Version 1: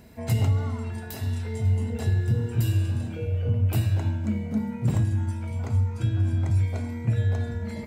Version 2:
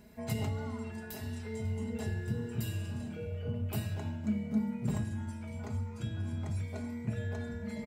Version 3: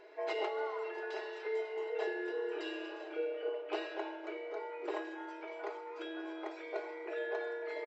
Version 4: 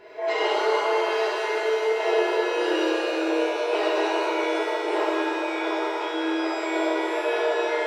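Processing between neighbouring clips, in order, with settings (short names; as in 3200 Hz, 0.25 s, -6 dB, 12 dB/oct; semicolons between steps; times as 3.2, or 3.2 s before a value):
comb 4.8 ms, depth 56%; gain -7.5 dB
air absorption 280 m; outdoor echo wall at 94 m, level -17 dB; FFT band-pass 300–8100 Hz; gain +8 dB
shimmer reverb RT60 3 s, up +7 st, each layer -8 dB, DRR -9.5 dB; gain +6 dB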